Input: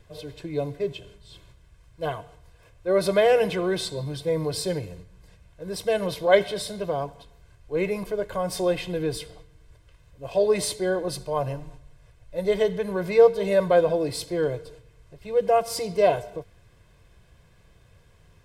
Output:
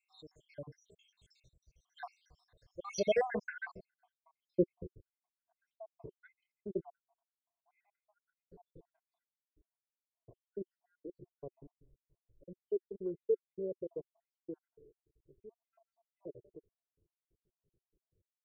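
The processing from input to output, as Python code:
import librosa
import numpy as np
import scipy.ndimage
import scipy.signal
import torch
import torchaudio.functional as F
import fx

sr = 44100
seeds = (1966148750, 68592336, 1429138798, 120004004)

y = fx.spec_dropout(x, sr, seeds[0], share_pct=81)
y = fx.doppler_pass(y, sr, speed_mps=10, closest_m=15.0, pass_at_s=4.6)
y = fx.filter_sweep_lowpass(y, sr, from_hz=5700.0, to_hz=370.0, start_s=3.05, end_s=4.1, q=4.7)
y = F.gain(torch.from_numpy(y), -5.0).numpy()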